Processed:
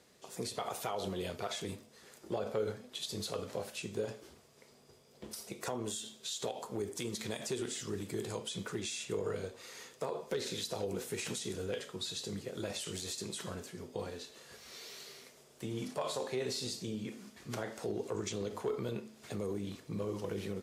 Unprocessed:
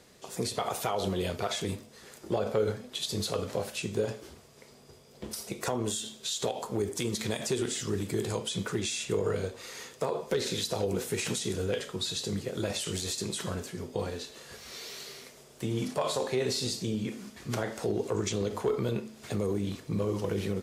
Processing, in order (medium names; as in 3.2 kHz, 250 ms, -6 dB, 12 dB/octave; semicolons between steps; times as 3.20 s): bass shelf 91 Hz -7.5 dB; trim -6.5 dB